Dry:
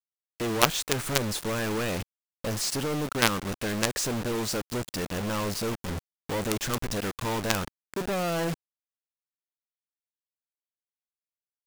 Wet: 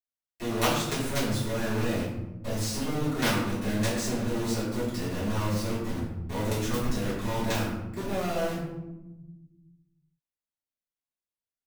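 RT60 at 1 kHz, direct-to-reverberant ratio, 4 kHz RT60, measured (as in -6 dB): 0.90 s, -11.5 dB, 0.55 s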